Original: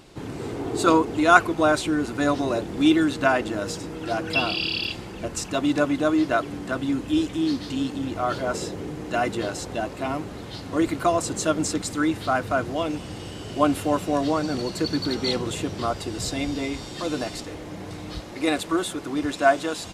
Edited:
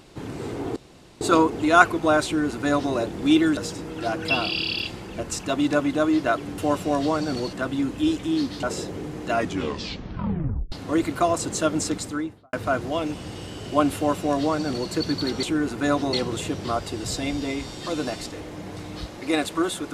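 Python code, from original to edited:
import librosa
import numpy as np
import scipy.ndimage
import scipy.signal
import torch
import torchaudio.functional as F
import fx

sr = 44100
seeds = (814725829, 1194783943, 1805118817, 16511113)

y = fx.studio_fade_out(x, sr, start_s=11.76, length_s=0.61)
y = fx.edit(y, sr, fx.insert_room_tone(at_s=0.76, length_s=0.45),
    fx.duplicate(start_s=1.8, length_s=0.7, to_s=15.27),
    fx.cut(start_s=3.12, length_s=0.5),
    fx.cut(start_s=7.73, length_s=0.74),
    fx.tape_stop(start_s=9.15, length_s=1.41),
    fx.duplicate(start_s=13.8, length_s=0.95, to_s=6.63), tone=tone)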